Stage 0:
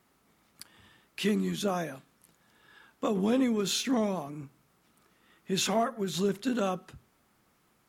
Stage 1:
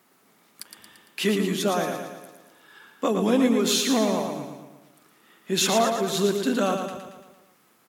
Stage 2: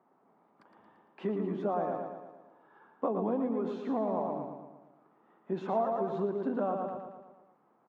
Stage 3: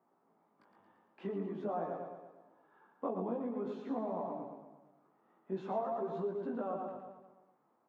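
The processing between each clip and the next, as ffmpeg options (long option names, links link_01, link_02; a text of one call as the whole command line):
ffmpeg -i in.wav -af "highpass=200,highshelf=frequency=12000:gain=5.5,aecho=1:1:114|228|342|456|570|684|798:0.501|0.266|0.141|0.0746|0.0395|0.021|0.0111,volume=6dB" out.wav
ffmpeg -i in.wav -af "highpass=120,acompressor=threshold=-23dB:ratio=6,lowpass=frequency=880:width_type=q:width=1.9,volume=-6dB" out.wav
ffmpeg -i in.wav -af "flanger=delay=17:depth=4.4:speed=0.47,volume=-3dB" out.wav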